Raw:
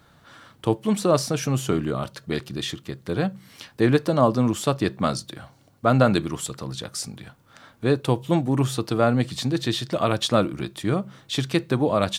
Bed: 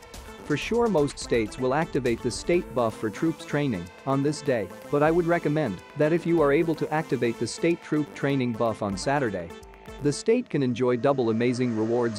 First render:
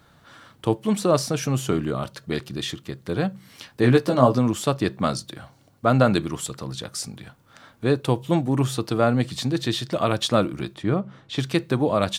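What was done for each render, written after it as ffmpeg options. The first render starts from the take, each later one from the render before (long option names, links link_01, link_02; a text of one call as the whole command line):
ffmpeg -i in.wav -filter_complex "[0:a]asettb=1/sr,asplit=3[link_01][link_02][link_03];[link_01]atrim=end=3.824[link_04];[link_02]atrim=start=3.82:end=4.39,asetpts=PTS-STARTPTS,afade=type=in:duration=0.004:curve=qsin,afade=type=out:start_time=0.566:duration=0.004:curve=qsin,asplit=2[link_05][link_06];[link_06]adelay=16,volume=-3.5dB[link_07];[link_05][link_07]amix=inputs=2:normalize=0,atrim=end_sample=25137[link_08];[link_03]atrim=start=4.386[link_09];[link_04][link_08]acrossfade=duration=0.004:curve1=hsin:curve2=qsin[link_10];[link_10][link_09]acrossfade=duration=0.004:curve1=qsin:curve2=hsin,asplit=3[link_11][link_12][link_13];[link_11]afade=type=out:start_time=10.74:duration=0.02[link_14];[link_12]aemphasis=mode=reproduction:type=75fm,afade=type=in:start_time=10.74:duration=0.02,afade=type=out:start_time=11.37:duration=0.02[link_15];[link_13]afade=type=in:start_time=11.37:duration=0.02[link_16];[link_14][link_15][link_16]amix=inputs=3:normalize=0" out.wav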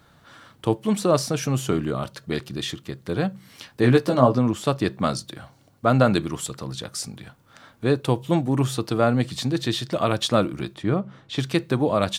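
ffmpeg -i in.wav -filter_complex "[0:a]asettb=1/sr,asplit=3[link_01][link_02][link_03];[link_01]atrim=end=4.204[link_04];[link_02]atrim=start=4.2:end=4.65,asetpts=PTS-STARTPTS,afade=type=in:duration=0.004:curve=qsin,afade=type=out:start_time=0.446:duration=0.004:curve=qsin,highshelf=frequency=4300:gain=-7.5[link_05];[link_03]atrim=start=4.646[link_06];[link_04][link_05]acrossfade=duration=0.004:curve1=hsin:curve2=qsin[link_07];[link_07][link_06]acrossfade=duration=0.004:curve1=qsin:curve2=hsin" out.wav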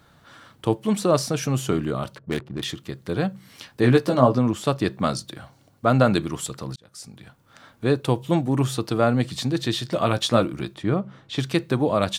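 ffmpeg -i in.wav -filter_complex "[0:a]asplit=3[link_01][link_02][link_03];[link_01]afade=type=out:start_time=2.15:duration=0.02[link_04];[link_02]adynamicsmooth=sensitivity=5.5:basefreq=510,afade=type=in:start_time=2.15:duration=0.02,afade=type=out:start_time=2.63:duration=0.02[link_05];[link_03]afade=type=in:start_time=2.63:duration=0.02[link_06];[link_04][link_05][link_06]amix=inputs=3:normalize=0,asettb=1/sr,asplit=3[link_07][link_08][link_09];[link_07]atrim=end=9.834[link_10];[link_08]atrim=start=9.83:end=10.43,asetpts=PTS-STARTPTS,afade=type=in:duration=0.004:curve=qsin,afade=type=out:start_time=0.596:duration=0.004:curve=qsin,asplit=2[link_11][link_12];[link_12]adelay=17,volume=-9.5dB[link_13];[link_11][link_13]amix=inputs=2:normalize=0,atrim=end_sample=26460[link_14];[link_09]atrim=start=10.426[link_15];[link_10][link_14]acrossfade=duration=0.004:curve1=hsin:curve2=qsin[link_16];[link_16][link_15]acrossfade=duration=0.004:curve1=qsin:curve2=hsin,asplit=2[link_17][link_18];[link_17]atrim=end=6.76,asetpts=PTS-STARTPTS,afade=type=out:start_time=6.756:duration=0.004:curve=hsin[link_19];[link_18]atrim=start=6.76,asetpts=PTS-STARTPTS,afade=type=in:duration=1.11:curve=qsin[link_20];[link_19][link_20]concat=n=2:v=0:a=1" out.wav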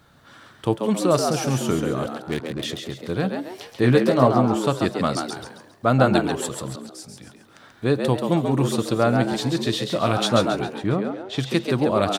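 ffmpeg -i in.wav -filter_complex "[0:a]asplit=6[link_01][link_02][link_03][link_04][link_05][link_06];[link_02]adelay=136,afreqshift=92,volume=-5.5dB[link_07];[link_03]adelay=272,afreqshift=184,volume=-13.7dB[link_08];[link_04]adelay=408,afreqshift=276,volume=-21.9dB[link_09];[link_05]adelay=544,afreqshift=368,volume=-30dB[link_10];[link_06]adelay=680,afreqshift=460,volume=-38.2dB[link_11];[link_01][link_07][link_08][link_09][link_10][link_11]amix=inputs=6:normalize=0" out.wav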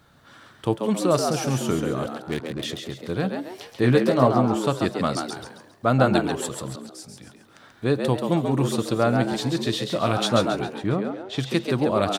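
ffmpeg -i in.wav -af "volume=-1.5dB" out.wav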